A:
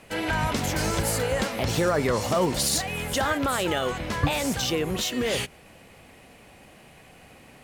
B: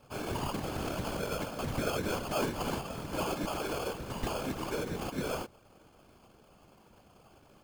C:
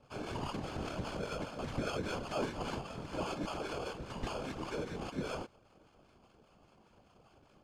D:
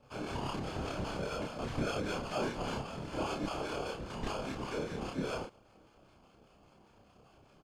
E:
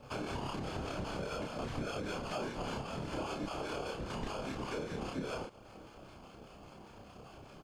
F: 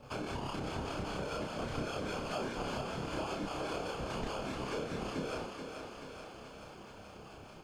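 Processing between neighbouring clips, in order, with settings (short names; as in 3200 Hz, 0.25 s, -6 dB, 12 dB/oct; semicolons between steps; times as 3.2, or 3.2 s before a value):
sample-and-hold 23×; whisperiser; gain -9 dB
LPF 6500 Hz 12 dB/oct; harmonic tremolo 5 Hz, depth 50%, crossover 870 Hz; gain -2 dB
doubler 30 ms -2.5 dB
compressor 4:1, threshold -47 dBFS, peak gain reduction 15 dB; gain +9 dB
thinning echo 0.432 s, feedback 70%, high-pass 240 Hz, level -6 dB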